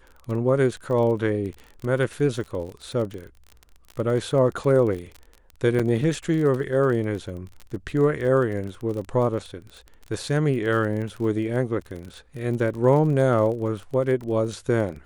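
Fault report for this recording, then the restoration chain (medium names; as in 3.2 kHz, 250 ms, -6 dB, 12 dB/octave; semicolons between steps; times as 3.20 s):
crackle 28 per s -31 dBFS
5.79–5.80 s: dropout 5.9 ms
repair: de-click; interpolate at 5.79 s, 5.9 ms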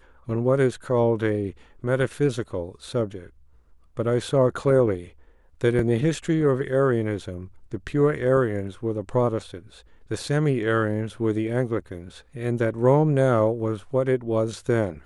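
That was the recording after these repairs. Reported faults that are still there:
nothing left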